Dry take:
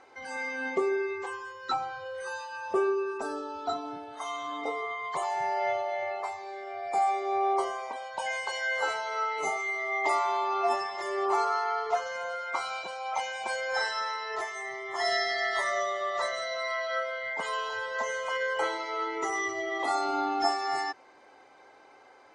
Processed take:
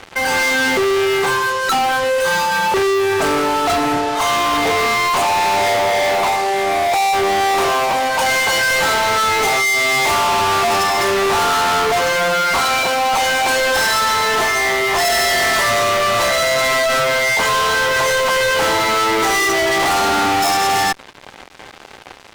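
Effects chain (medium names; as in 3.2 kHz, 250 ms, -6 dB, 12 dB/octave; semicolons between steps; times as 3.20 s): fuzz box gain 44 dB, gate -52 dBFS; trim -1.5 dB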